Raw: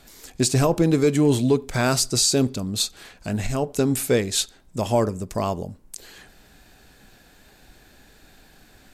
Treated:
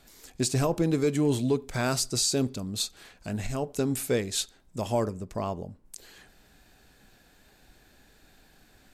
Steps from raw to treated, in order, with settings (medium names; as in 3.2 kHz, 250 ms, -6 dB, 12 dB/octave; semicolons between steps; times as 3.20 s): 5.11–5.84 s: treble shelf 5.2 kHz -> 3.6 kHz -9 dB; trim -6.5 dB